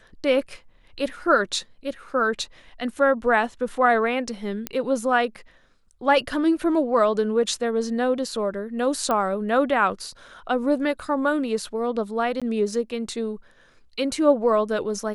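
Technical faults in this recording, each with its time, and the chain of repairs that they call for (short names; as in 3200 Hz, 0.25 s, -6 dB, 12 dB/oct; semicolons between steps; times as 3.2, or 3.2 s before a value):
4.67 pop -10 dBFS
9.11 pop -12 dBFS
12.4–12.42 gap 16 ms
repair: de-click; interpolate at 12.4, 16 ms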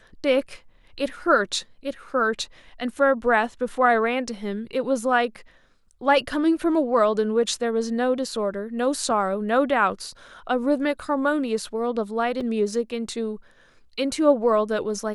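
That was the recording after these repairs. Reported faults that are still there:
9.11 pop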